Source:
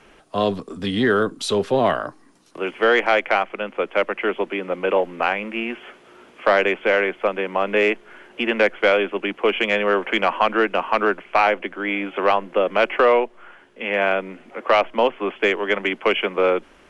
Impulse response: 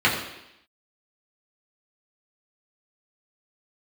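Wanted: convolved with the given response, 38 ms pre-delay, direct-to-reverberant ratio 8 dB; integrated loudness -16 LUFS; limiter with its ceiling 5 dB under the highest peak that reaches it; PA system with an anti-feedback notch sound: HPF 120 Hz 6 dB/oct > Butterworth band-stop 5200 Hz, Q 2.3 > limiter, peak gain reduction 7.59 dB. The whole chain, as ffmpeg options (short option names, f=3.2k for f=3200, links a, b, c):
-filter_complex "[0:a]alimiter=limit=-9.5dB:level=0:latency=1,asplit=2[a][b];[1:a]atrim=start_sample=2205,adelay=38[c];[b][c]afir=irnorm=-1:irlink=0,volume=-27dB[d];[a][d]amix=inputs=2:normalize=0,highpass=f=120:p=1,asuperstop=centerf=5200:order=8:qfactor=2.3,volume=9.5dB,alimiter=limit=-5.5dB:level=0:latency=1"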